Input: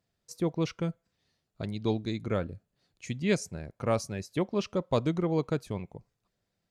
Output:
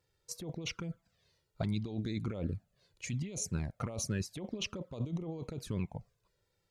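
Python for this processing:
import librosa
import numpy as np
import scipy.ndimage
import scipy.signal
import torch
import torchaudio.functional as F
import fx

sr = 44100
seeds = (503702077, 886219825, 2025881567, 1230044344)

y = fx.env_flanger(x, sr, rest_ms=2.2, full_db=-24.5)
y = fx.over_compress(y, sr, threshold_db=-37.0, ratio=-1.0)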